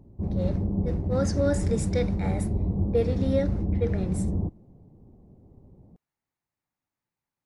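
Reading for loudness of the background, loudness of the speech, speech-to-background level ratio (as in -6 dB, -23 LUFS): -28.5 LUFS, -31.0 LUFS, -2.5 dB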